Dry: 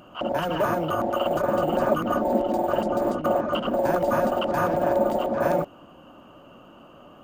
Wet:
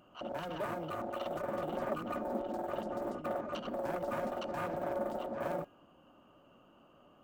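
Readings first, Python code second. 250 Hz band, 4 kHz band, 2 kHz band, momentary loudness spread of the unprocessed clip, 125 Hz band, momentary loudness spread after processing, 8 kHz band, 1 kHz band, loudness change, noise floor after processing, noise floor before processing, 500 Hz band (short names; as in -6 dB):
-14.0 dB, -14.0 dB, -13.0 dB, 3 LU, -14.0 dB, 3 LU, n/a, -14.0 dB, -14.0 dB, -63 dBFS, -49 dBFS, -14.0 dB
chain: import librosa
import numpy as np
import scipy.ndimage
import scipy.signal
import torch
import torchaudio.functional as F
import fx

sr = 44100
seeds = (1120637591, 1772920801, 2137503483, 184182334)

y = fx.self_delay(x, sr, depth_ms=0.17)
y = fx.comb_fb(y, sr, f0_hz=410.0, decay_s=0.59, harmonics='all', damping=0.0, mix_pct=50)
y = F.gain(torch.from_numpy(y), -8.0).numpy()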